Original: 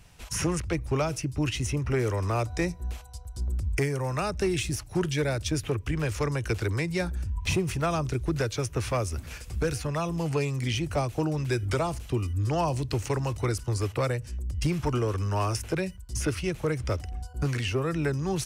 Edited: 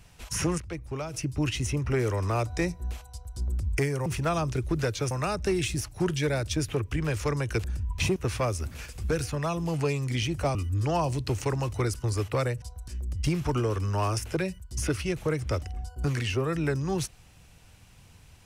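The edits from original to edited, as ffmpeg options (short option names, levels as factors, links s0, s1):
-filter_complex "[0:a]asplit=10[s0][s1][s2][s3][s4][s5][s6][s7][s8][s9];[s0]atrim=end=0.582[s10];[s1]atrim=start=0.578:end=1.142,asetpts=PTS-STARTPTS,volume=0.422[s11];[s2]atrim=start=1.138:end=4.062[s12];[s3]atrim=start=7.628:end=8.682[s13];[s4]atrim=start=4.058:end=6.592[s14];[s5]atrim=start=7.108:end=7.632[s15];[s6]atrim=start=8.678:end=11.072[s16];[s7]atrim=start=12.188:end=14.262[s17];[s8]atrim=start=3.108:end=3.372[s18];[s9]atrim=start=14.258[s19];[s10][s11]acrossfade=d=0.004:c1=hsin:c2=hsin[s20];[s20][s12]acrossfade=d=0.004:c1=hsin:c2=hsin[s21];[s21][s13]acrossfade=d=0.004:c1=hsin:c2=hsin[s22];[s22][s14]acrossfade=d=0.004:c1=hsin:c2=hsin[s23];[s23][s15]acrossfade=d=0.004:c1=hsin:c2=hsin[s24];[s24][s16]acrossfade=d=0.004:c1=hsin:c2=hsin[s25];[s25][s17]acrossfade=d=0.004:c1=hsin:c2=hsin[s26];[s26][s18]acrossfade=d=0.004:c1=hsin:c2=hsin[s27];[s27][s19]acrossfade=d=0.004:c1=hsin:c2=hsin"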